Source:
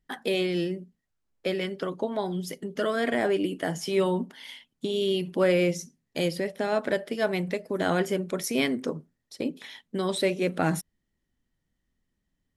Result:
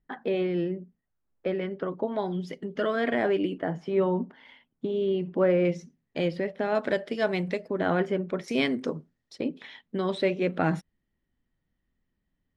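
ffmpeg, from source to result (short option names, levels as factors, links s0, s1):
-af "asetnsamples=n=441:p=0,asendcmd='2.08 lowpass f 3200;3.58 lowpass f 1500;5.65 lowpass f 2700;6.75 lowpass f 5400;7.68 lowpass f 2300;8.48 lowpass f 5400;9.38 lowpass f 3100',lowpass=1700"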